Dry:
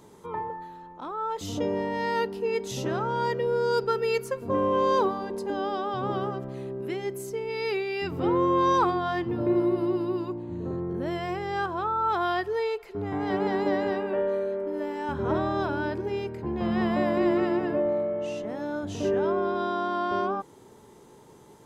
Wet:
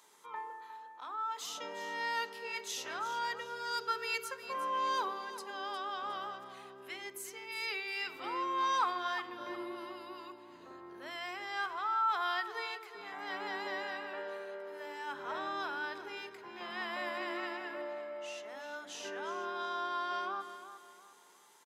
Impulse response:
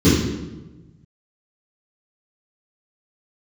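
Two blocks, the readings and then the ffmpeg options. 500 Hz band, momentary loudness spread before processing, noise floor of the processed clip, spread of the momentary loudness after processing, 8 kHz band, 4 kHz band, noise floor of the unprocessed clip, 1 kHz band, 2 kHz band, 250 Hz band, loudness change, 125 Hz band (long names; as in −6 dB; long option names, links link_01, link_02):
−17.5 dB, 9 LU, −56 dBFS, 13 LU, can't be measured, −1.0 dB, −52 dBFS, −7.0 dB, −2.5 dB, −21.0 dB, −10.0 dB, below −30 dB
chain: -filter_complex "[0:a]highpass=1300,aecho=1:1:359|718|1077|1436:0.237|0.083|0.029|0.0102,asplit=2[link_01][link_02];[1:a]atrim=start_sample=2205[link_03];[link_02][link_03]afir=irnorm=-1:irlink=0,volume=-35dB[link_04];[link_01][link_04]amix=inputs=2:normalize=0,volume=-1.5dB"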